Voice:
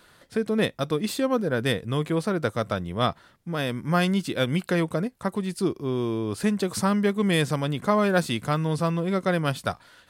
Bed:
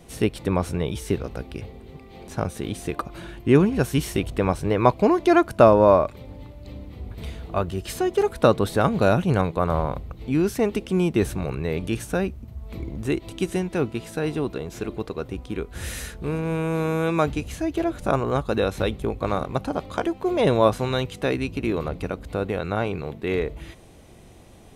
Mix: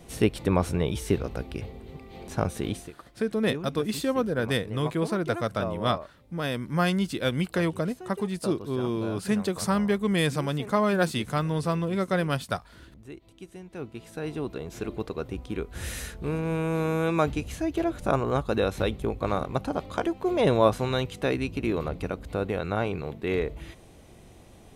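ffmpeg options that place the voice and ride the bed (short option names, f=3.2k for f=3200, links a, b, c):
-filter_complex "[0:a]adelay=2850,volume=-2dB[a];[1:a]volume=16dB,afade=t=out:st=2.7:d=0.21:silence=0.11885,afade=t=in:st=13.58:d=1.38:silence=0.149624[b];[a][b]amix=inputs=2:normalize=0"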